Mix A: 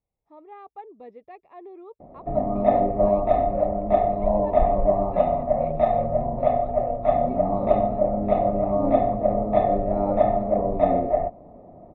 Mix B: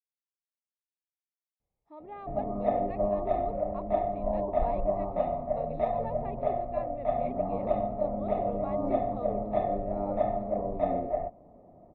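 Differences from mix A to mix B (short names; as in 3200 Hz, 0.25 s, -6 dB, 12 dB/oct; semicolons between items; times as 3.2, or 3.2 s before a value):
speech: entry +1.60 s; background -8.5 dB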